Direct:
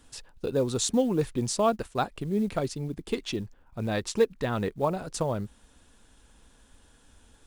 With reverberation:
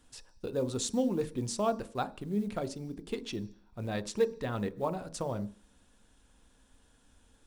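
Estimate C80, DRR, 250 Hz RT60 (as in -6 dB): 22.0 dB, 12.0 dB, 0.50 s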